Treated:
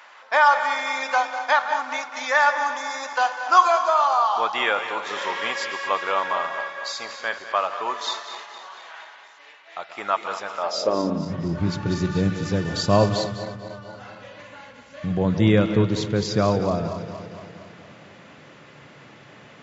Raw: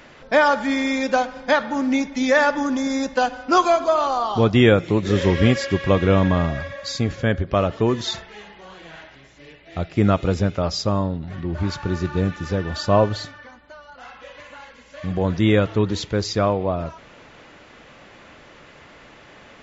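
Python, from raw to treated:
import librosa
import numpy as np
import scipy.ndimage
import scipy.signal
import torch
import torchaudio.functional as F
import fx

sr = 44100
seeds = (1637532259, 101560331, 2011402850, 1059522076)

p1 = fx.reverse_delay_fb(x, sr, ms=116, feedback_pct=76, wet_db=-12)
p2 = fx.high_shelf(p1, sr, hz=4600.0, db=10.5, at=(11.86, 13.24))
p3 = p2 + fx.echo_single(p2, sr, ms=198, db=-13.5, dry=0)
p4 = fx.filter_sweep_highpass(p3, sr, from_hz=960.0, to_hz=130.0, start_s=10.6, end_s=11.34, q=2.2)
y = p4 * 10.0 ** (-2.5 / 20.0)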